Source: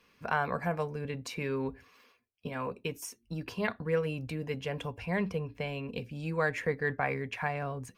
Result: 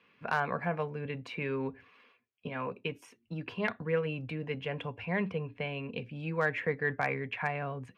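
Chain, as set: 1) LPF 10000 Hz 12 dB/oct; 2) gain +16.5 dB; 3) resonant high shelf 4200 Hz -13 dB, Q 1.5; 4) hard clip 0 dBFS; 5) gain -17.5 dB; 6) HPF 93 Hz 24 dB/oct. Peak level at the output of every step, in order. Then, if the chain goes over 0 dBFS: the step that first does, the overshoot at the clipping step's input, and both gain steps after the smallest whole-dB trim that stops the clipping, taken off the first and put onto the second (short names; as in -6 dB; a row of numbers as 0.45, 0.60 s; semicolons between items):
-14.0, +2.5, +3.5, 0.0, -17.5, -16.0 dBFS; step 2, 3.5 dB; step 2 +12.5 dB, step 5 -13.5 dB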